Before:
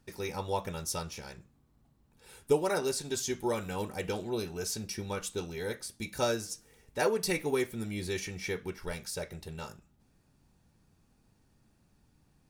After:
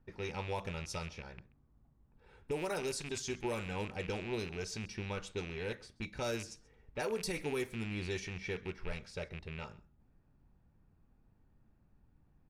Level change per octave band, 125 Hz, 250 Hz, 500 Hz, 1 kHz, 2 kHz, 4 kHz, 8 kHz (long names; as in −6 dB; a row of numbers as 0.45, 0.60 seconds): −2.0, −5.0, −7.0, −6.5, −3.0, −5.5, −9.0 decibels